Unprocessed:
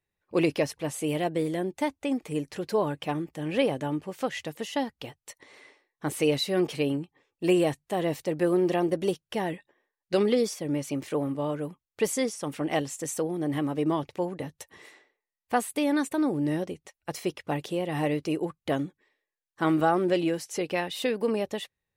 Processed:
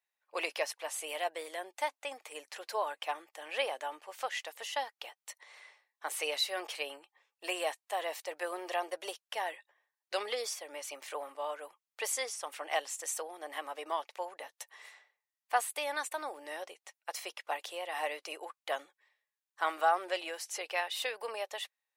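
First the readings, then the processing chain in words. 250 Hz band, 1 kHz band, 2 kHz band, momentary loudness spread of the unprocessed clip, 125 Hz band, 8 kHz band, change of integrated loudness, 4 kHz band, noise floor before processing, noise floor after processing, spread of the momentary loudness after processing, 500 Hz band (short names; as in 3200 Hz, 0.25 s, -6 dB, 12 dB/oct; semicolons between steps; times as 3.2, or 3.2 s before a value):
-27.0 dB, -2.5 dB, -1.5 dB, 10 LU, under -40 dB, -1.5 dB, -8.5 dB, -1.5 dB, under -85 dBFS, under -85 dBFS, 12 LU, -11.0 dB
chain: HPF 660 Hz 24 dB/oct; gain -1.5 dB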